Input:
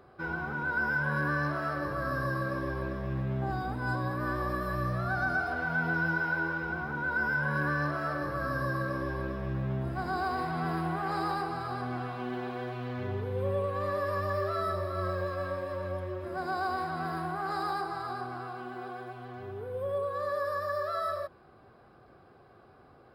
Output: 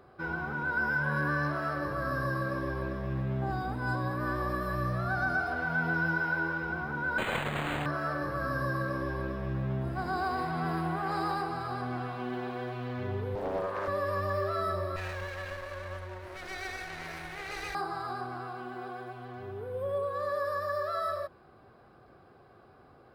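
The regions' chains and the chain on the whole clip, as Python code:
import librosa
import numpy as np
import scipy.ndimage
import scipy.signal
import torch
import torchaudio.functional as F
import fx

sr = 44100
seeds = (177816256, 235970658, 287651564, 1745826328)

y = fx.chain(x, sr, fx.self_delay(depth_ms=0.86),
    fx.highpass(hz=57.0, slope=12),
    fx.resample_linear(factor=8), at=(7.18, 7.86))
y = fx.chain(y, sr, fx.highpass(hz=300.0, slope=6),
    fx.doppler_dist(depth_ms=0.72), at=(13.35, 13.88))
y = fx.chain(y, sr, fx.lower_of_two(delay_ms=0.47),
    fx.peak_eq(hz=220.0, db=-14.5, octaves=1.5), at=(14.96, 17.75))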